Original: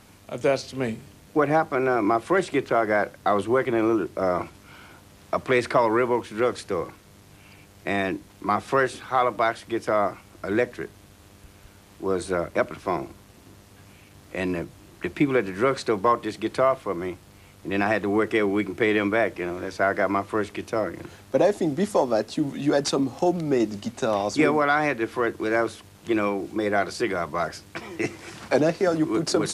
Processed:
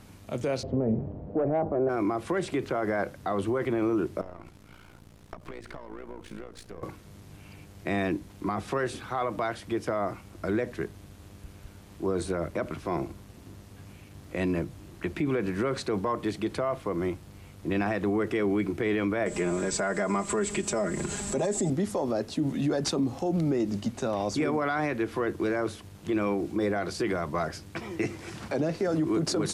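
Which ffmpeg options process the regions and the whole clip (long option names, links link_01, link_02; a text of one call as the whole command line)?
ffmpeg -i in.wav -filter_complex "[0:a]asettb=1/sr,asplit=3[link_01][link_02][link_03];[link_01]atrim=end=0.634[link_04];[link_02]atrim=start=0.63:end=1.89,asetpts=PTS-STARTPTS,afade=type=in:duration=0.004:curve=qsin,afade=type=out:start_time=1.256:duration=0.004:curve=qsin,lowpass=frequency=620:width_type=q:width=2.3,acontrast=89[link_05];[link_03]atrim=start=1.886[link_06];[link_04][link_05]acrossfade=duration=0.004:curve1=hsin:curve2=qsin[link_07];[link_07][link_06]acrossfade=duration=0.004:curve1=qsin:curve2=hsin,asettb=1/sr,asplit=3[link_08][link_09][link_10];[link_08]atrim=end=4.214[link_11];[link_09]atrim=start=4.21:end=6.83,asetpts=PTS-STARTPTS,afade=type=in:duration=0.004:curve=qsin,afade=type=out:start_time=2.616:duration=0.004:curve=qsin,aeval=exprs='if(lt(val(0),0),0.447*val(0),val(0))':channel_layout=same,acompressor=threshold=-34dB:ratio=16:attack=3.2:release=140:knee=1:detection=peak,tremolo=f=58:d=0.75[link_12];[link_10]atrim=start=6.826[link_13];[link_11][link_12]acrossfade=duration=0.004:curve1=hsin:curve2=qsin[link_14];[link_14][link_13]acrossfade=duration=0.004:curve1=qsin:curve2=hsin,asettb=1/sr,asplit=3[link_15][link_16][link_17];[link_15]atrim=end=19.264[link_18];[link_16]atrim=start=19.26:end=21.7,asetpts=PTS-STARTPTS,afade=type=in:duration=0.004:curve=qsin,afade=type=out:start_time=2.436:duration=0.004:curve=qsin,aecho=1:1:4.9:0.81,atrim=end_sample=107604,acompressor=mode=upward:threshold=-24dB:ratio=2.5:attack=3.2:release=140:knee=2.83:detection=peak,lowpass=frequency=7800:width_type=q:width=16[link_19];[link_17]atrim=start=21.696[link_20];[link_18][link_19]acrossfade=duration=0.004:curve1=hsin:curve2=qsin[link_21];[link_21][link_20]acrossfade=duration=0.004:curve1=qsin:curve2=hsin,lowshelf=frequency=340:gain=8,alimiter=limit=-16.5dB:level=0:latency=1:release=48,volume=-3dB" out.wav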